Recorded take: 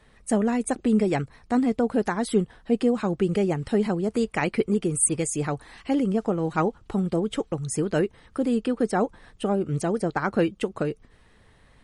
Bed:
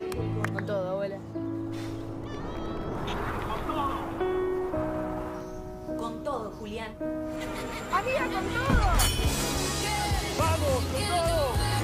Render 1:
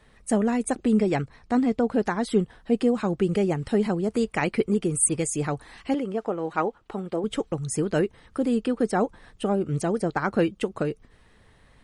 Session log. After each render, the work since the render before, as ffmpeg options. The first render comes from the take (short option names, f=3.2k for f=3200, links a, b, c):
-filter_complex "[0:a]asettb=1/sr,asplit=3[a][b][c];[a]atrim=end=0.994[d];[b]atrim=start=0.99:end=2.43,asetpts=PTS-STARTPTS,afade=t=in:d=0.004:c=qsin,afade=t=out:st=1.436:d=0.004:c=qsin,lowpass=7.7k[e];[c]atrim=start=2.426[f];[d][e]acrossfade=d=0.004:c1=hsin:c2=qsin[g];[g][f]acrossfade=d=0.004:c1=qsin:c2=hsin,asettb=1/sr,asplit=3[h][i][j];[h]atrim=end=5.944[k];[i]atrim=start=5.94:end=7.24,asetpts=PTS-STARTPTS,afade=t=in:d=0.004:c=qsin,afade=t=out:st=1.296:d=0.004:c=qsin,bass=f=250:g=-13,treble=f=4k:g=-8[l];[j]atrim=start=7.236[m];[k][l]acrossfade=d=0.004:c1=hsin:c2=qsin[n];[n][m]acrossfade=d=0.004:c1=qsin:c2=hsin"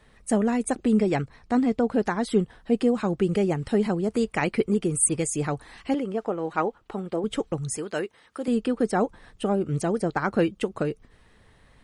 -filter_complex "[0:a]asettb=1/sr,asplit=3[a][b][c];[a]atrim=end=7.774[d];[b]atrim=start=7.77:end=8.48,asetpts=PTS-STARTPTS,afade=t=in:d=0.004:c=qsin,afade=t=out:st=0.706:d=0.004:c=qsin,highpass=f=710:p=1[e];[c]atrim=start=8.476[f];[d][e]acrossfade=d=0.004:c1=hsin:c2=qsin[g];[g][f]acrossfade=d=0.004:c1=qsin:c2=hsin"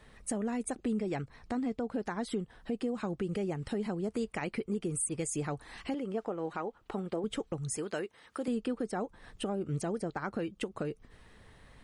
-af "alimiter=limit=-19dB:level=0:latency=1:release=307,acompressor=threshold=-40dB:ratio=1.5"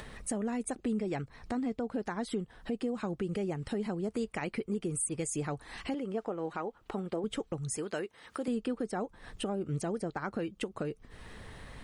-af "acompressor=mode=upward:threshold=-37dB:ratio=2.5"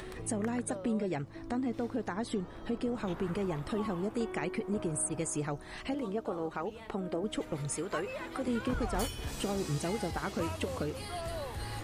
-filter_complex "[1:a]volume=-13dB[a];[0:a][a]amix=inputs=2:normalize=0"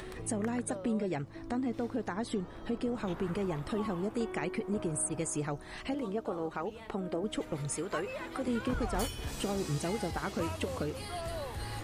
-af anull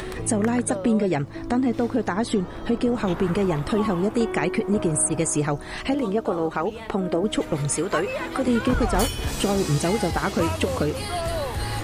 -af "volume=11.5dB"